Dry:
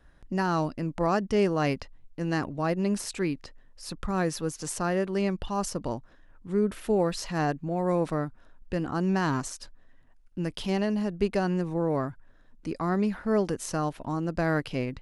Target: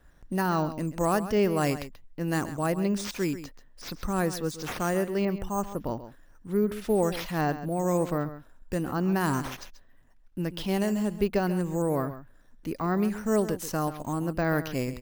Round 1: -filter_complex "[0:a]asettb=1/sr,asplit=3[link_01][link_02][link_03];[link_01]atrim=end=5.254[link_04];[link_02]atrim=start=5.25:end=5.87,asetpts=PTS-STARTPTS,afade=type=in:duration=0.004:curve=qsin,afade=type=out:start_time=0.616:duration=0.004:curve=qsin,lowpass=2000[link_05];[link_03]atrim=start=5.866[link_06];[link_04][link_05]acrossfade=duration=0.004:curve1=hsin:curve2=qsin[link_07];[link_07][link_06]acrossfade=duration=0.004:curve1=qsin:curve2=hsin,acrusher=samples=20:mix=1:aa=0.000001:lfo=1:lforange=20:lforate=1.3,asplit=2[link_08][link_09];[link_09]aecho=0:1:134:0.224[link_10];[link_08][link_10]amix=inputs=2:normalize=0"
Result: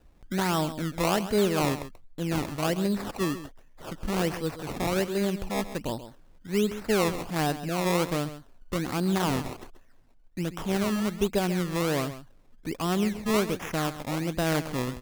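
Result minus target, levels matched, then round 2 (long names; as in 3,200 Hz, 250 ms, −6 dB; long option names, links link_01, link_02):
sample-and-hold swept by an LFO: distortion +13 dB
-filter_complex "[0:a]asettb=1/sr,asplit=3[link_01][link_02][link_03];[link_01]atrim=end=5.254[link_04];[link_02]atrim=start=5.25:end=5.87,asetpts=PTS-STARTPTS,afade=type=in:duration=0.004:curve=qsin,afade=type=out:start_time=0.616:duration=0.004:curve=qsin,lowpass=2000[link_05];[link_03]atrim=start=5.866[link_06];[link_04][link_05]acrossfade=duration=0.004:curve1=hsin:curve2=qsin[link_07];[link_07][link_06]acrossfade=duration=0.004:curve1=qsin:curve2=hsin,acrusher=samples=4:mix=1:aa=0.000001:lfo=1:lforange=4:lforate=1.3,asplit=2[link_08][link_09];[link_09]aecho=0:1:134:0.224[link_10];[link_08][link_10]amix=inputs=2:normalize=0"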